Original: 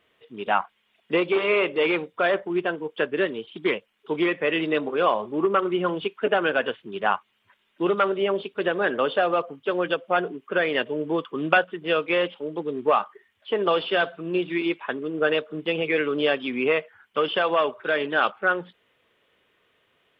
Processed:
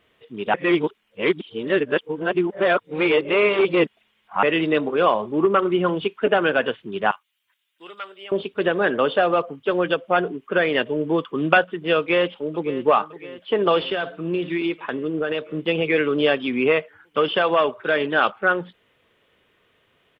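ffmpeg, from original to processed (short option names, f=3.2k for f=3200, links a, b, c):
-filter_complex "[0:a]asettb=1/sr,asplit=3[a][b][c];[a]atrim=end=7.114[d];[b]atrim=start=7.11:end=8.32,asetpts=PTS-STARTPTS,afade=t=in:d=0.004:c=qsin,afade=t=out:st=1.206:d=0.004:c=qsin,aderivative[e];[c]atrim=start=8.316[f];[d][e]acrossfade=d=0.004:c1=hsin:c2=qsin[g];[g][f]acrossfade=d=0.004:c1=qsin:c2=hsin,asplit=2[h][i];[i]afade=t=in:st=11.98:d=0.01,afade=t=out:st=12.83:d=0.01,aecho=0:1:560|1120|1680|2240|2800|3360|3920|4480:0.149624|0.104736|0.0733155|0.0513209|0.0359246|0.0251472|0.0176031|0.0123221[j];[h][j]amix=inputs=2:normalize=0,asettb=1/sr,asplit=3[k][l][m];[k]atrim=end=13.794[n];[l]atrim=start=13.79:end=15.54,asetpts=PTS-STARTPTS,afade=t=in:d=0.004:c=qsin,afade=t=out:st=1.746:d=0.004:c=qsin,acompressor=threshold=-23dB:ratio=6:attack=3.2:release=140:knee=1:detection=peak[o];[m]atrim=start=15.536[p];[n][o]acrossfade=d=0.004:c1=hsin:c2=qsin[q];[q][p]acrossfade=d=0.004:c1=qsin:c2=hsin,asplit=3[r][s][t];[r]atrim=end=0.542[u];[s]atrim=start=0.538:end=4.432,asetpts=PTS-STARTPTS,areverse[v];[t]atrim=start=4.428[w];[u][v]acrossfade=d=0.004:c1=hsin:c2=hsin[x];[x][w]acrossfade=d=0.004:c1=hsin:c2=hsin,lowshelf=f=210:g=6.5,volume=2.5dB"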